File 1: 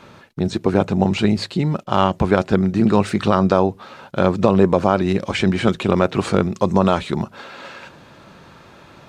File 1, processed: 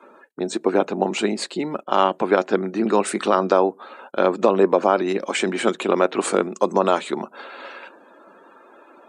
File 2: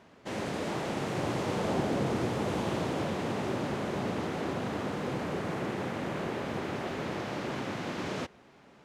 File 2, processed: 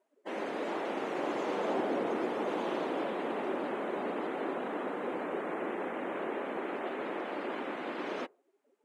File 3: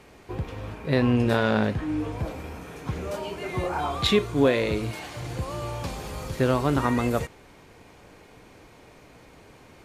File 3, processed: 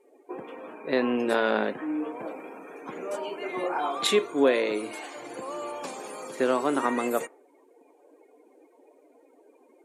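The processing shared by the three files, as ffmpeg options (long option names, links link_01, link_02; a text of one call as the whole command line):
ffmpeg -i in.wav -af "highpass=frequency=270:width=0.5412,highpass=frequency=270:width=1.3066,afftdn=noise_reduction=24:noise_floor=-46,highshelf=frequency=6500:width_type=q:width=1.5:gain=9.5" out.wav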